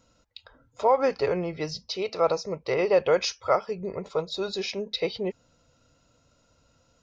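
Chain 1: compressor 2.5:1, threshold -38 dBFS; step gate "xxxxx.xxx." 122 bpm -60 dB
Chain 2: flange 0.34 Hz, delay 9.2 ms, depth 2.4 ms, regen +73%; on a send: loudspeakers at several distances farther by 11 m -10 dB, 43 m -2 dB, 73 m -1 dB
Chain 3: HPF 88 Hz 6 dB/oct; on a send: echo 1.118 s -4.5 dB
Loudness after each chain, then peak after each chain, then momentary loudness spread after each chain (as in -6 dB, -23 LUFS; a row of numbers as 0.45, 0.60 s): -38.5, -27.5, -26.5 LUFS; -22.5, -11.5, -10.5 dBFS; 12, 9, 12 LU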